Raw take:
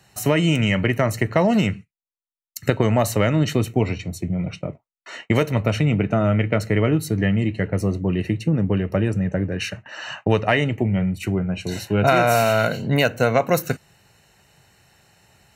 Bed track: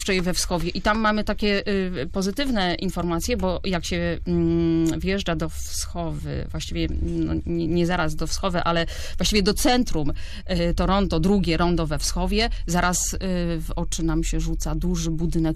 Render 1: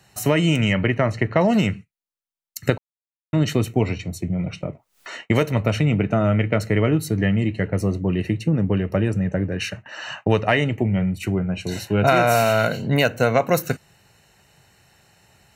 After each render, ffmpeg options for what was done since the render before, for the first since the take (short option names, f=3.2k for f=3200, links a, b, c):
-filter_complex "[0:a]asettb=1/sr,asplit=3[a][b][c];[a]atrim=end=0.734[d];[b]atrim=start=0.73:end=1.41,asetpts=PTS-STARTPTS,afade=t=in:d=0.004:c=qsin,afade=t=out:st=0.676:d=0.004:c=qsin,lowpass=3.8k[e];[c]atrim=start=1.406[f];[d][e]acrossfade=d=0.004:c1=hsin:c2=qsin[g];[g][f]acrossfade=d=0.004:c1=qsin:c2=hsin,asettb=1/sr,asplit=3[h][i][j];[h]atrim=end=4.404[k];[i]atrim=start=4.4:end=5.17,asetpts=PTS-STARTPTS,afade=t=in:d=0.004:c=qsin,afade=t=out:st=0.766:d=0.004:c=qsin,acompressor=mode=upward:threshold=-29dB:ratio=2.5:attack=3.2:release=140:knee=2.83:detection=peak[l];[j]atrim=start=5.166[m];[k][l]acrossfade=d=0.004:c1=hsin:c2=qsin[n];[n][m]acrossfade=d=0.004:c1=qsin:c2=hsin,asplit=3[o][p][q];[o]atrim=end=2.78,asetpts=PTS-STARTPTS,afade=t=out:st=2.776:d=0.004:c=hsin[r];[p]atrim=start=2.78:end=3.33,asetpts=PTS-STARTPTS,volume=0[s];[q]atrim=start=3.33,asetpts=PTS-STARTPTS,afade=t=in:d=0.004:c=hsin[t];[r][s][t]concat=n=3:v=0:a=1"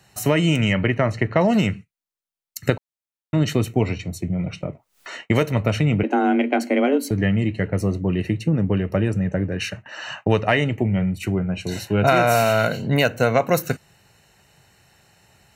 -filter_complex "[0:a]asettb=1/sr,asplit=3[a][b][c];[a]atrim=end=6.034[d];[b]atrim=start=6.03:end=7.11,asetpts=PTS-STARTPTS,afade=t=in:d=0.004:c=qsin,afade=t=out:st=1.076:d=0.004:c=qsin,afreqshift=130[e];[c]atrim=start=7.106[f];[d][e]acrossfade=d=0.004:c1=hsin:c2=qsin[g];[g][f]acrossfade=d=0.004:c1=qsin:c2=hsin"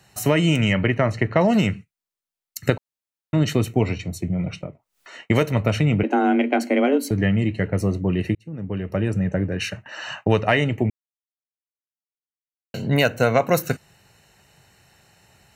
-filter_complex "[0:a]asplit=6[a][b][c][d][e][f];[a]atrim=end=4.7,asetpts=PTS-STARTPTS,afade=t=out:st=4.56:d=0.14:silence=0.398107[g];[b]atrim=start=4.7:end=5.13,asetpts=PTS-STARTPTS,volume=-8dB[h];[c]atrim=start=5.13:end=8.35,asetpts=PTS-STARTPTS,afade=t=in:d=0.14:silence=0.398107,afade=t=out:st=3.216:d=0.004:c=hsin[i];[d]atrim=start=8.35:end=10.9,asetpts=PTS-STARTPTS,afade=t=in:d=0.85,afade=t=out:st=2.546:d=0.004:c=hsin[j];[e]atrim=start=10.9:end=12.74,asetpts=PTS-STARTPTS,volume=0[k];[f]atrim=start=12.74,asetpts=PTS-STARTPTS,afade=t=in:d=0.004:c=hsin[l];[g][h][i][j][k][l]concat=n=6:v=0:a=1"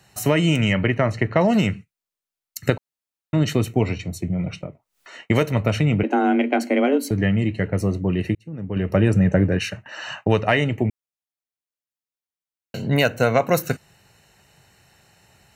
-filter_complex "[0:a]asplit=3[a][b][c];[a]atrim=end=8.762[d];[b]atrim=start=8.758:end=9.592,asetpts=PTS-STARTPTS,volume=5.5dB[e];[c]atrim=start=9.588[f];[d][e]acrossfade=d=0.004:c1=hsin:c2=hsin[g];[g][f]acrossfade=d=0.004:c1=hsin:c2=hsin"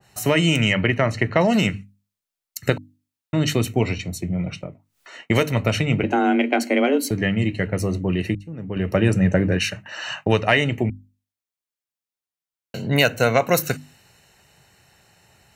-af "bandreject=f=50:t=h:w=6,bandreject=f=100:t=h:w=6,bandreject=f=150:t=h:w=6,bandreject=f=200:t=h:w=6,bandreject=f=250:t=h:w=6,bandreject=f=300:t=h:w=6,adynamicequalizer=threshold=0.0158:dfrequency=1800:dqfactor=0.7:tfrequency=1800:tqfactor=0.7:attack=5:release=100:ratio=0.375:range=2.5:mode=boostabove:tftype=highshelf"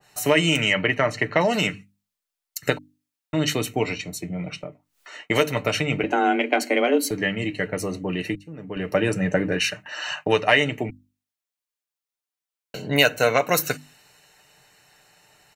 -af "equalizer=f=88:t=o:w=2.5:g=-11.5,aecho=1:1:6.7:0.41"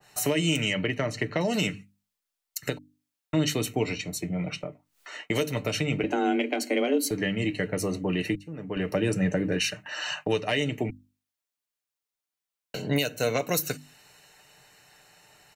-filter_complex "[0:a]acrossover=split=490|3000[a][b][c];[b]acompressor=threshold=-34dB:ratio=3[d];[a][d][c]amix=inputs=3:normalize=0,alimiter=limit=-14.5dB:level=0:latency=1:release=395"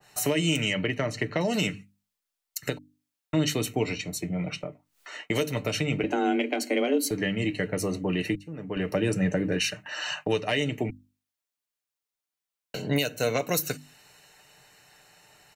-af anull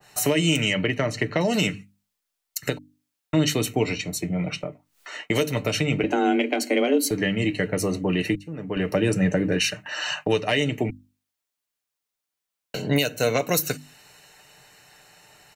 -af "volume=4dB"